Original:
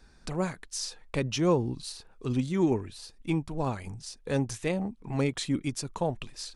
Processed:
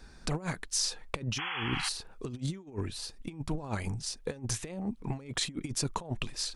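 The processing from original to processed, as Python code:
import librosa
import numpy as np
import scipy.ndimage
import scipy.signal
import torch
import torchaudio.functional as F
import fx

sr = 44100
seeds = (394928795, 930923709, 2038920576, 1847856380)

y = fx.over_compress(x, sr, threshold_db=-34.0, ratio=-0.5)
y = fx.spec_paint(y, sr, seeds[0], shape='noise', start_s=1.38, length_s=0.51, low_hz=730.0, high_hz=3400.0, level_db=-36.0)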